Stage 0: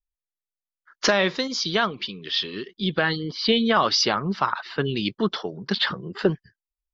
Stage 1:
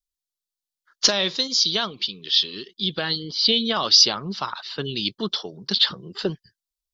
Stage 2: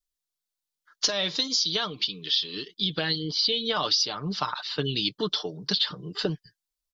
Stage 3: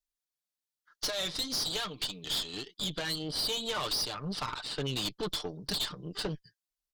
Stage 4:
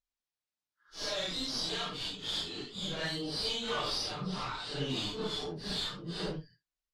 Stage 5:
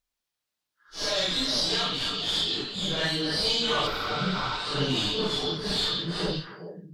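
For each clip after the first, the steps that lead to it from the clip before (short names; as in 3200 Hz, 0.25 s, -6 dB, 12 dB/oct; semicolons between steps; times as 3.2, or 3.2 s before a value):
resonant high shelf 2800 Hz +10 dB, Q 1.5; gain -4.5 dB
comb 6.7 ms, depth 49%; compressor 6:1, threshold -22 dBFS, peak gain reduction 12.5 dB
tube stage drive 28 dB, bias 0.8
phase scrambler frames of 0.2 s; air absorption 69 m
delay with a stepping band-pass 0.135 s, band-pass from 3700 Hz, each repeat -1.4 oct, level -2 dB; spectral repair 3.9–4.49, 1200–11000 Hz after; gain +7.5 dB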